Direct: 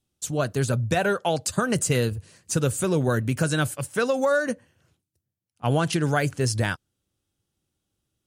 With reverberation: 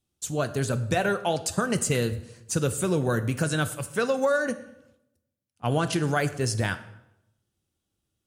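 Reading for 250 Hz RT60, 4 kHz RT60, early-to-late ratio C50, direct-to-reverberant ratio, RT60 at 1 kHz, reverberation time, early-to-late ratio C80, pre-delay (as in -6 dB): 0.90 s, 0.65 s, 14.5 dB, 11.0 dB, 0.80 s, 0.85 s, 16.0 dB, 3 ms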